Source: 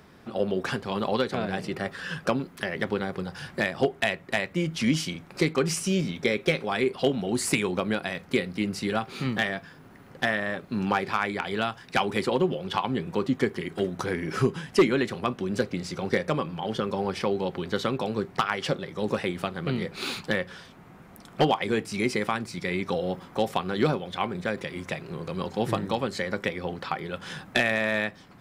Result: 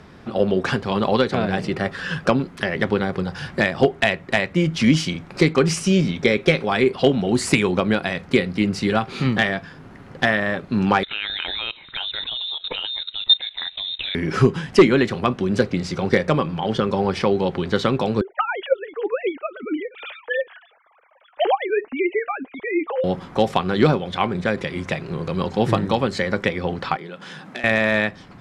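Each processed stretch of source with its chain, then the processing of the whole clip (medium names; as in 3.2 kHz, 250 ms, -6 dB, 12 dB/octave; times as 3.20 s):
11.03–14.15 s: peaking EQ 260 Hz +9 dB 0.23 oct + level held to a coarse grid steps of 17 dB + frequency inversion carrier 3.9 kHz
18.21–23.04 s: formants replaced by sine waves + flange 1.8 Hz, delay 1.3 ms, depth 3.8 ms, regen +44%
26.96–27.64 s: high-pass 160 Hz 24 dB/octave + compression 2.5:1, threshold -43 dBFS
whole clip: Bessel low-pass 6.4 kHz, order 2; bass shelf 110 Hz +5.5 dB; trim +7 dB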